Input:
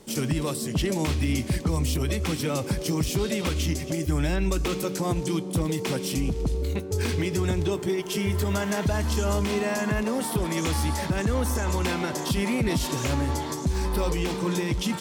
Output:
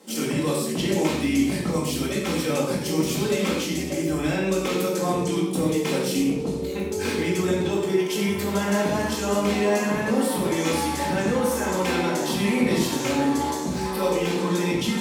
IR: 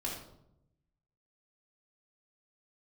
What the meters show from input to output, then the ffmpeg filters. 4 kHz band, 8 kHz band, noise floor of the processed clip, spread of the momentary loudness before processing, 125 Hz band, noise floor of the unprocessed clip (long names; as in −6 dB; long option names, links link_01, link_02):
+2.5 dB, +2.0 dB, −28 dBFS, 2 LU, −3.0 dB, −33 dBFS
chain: -filter_complex "[0:a]highpass=230[link_01];[1:a]atrim=start_sample=2205,atrim=end_sample=6615,asetrate=33075,aresample=44100[link_02];[link_01][link_02]afir=irnorm=-1:irlink=0"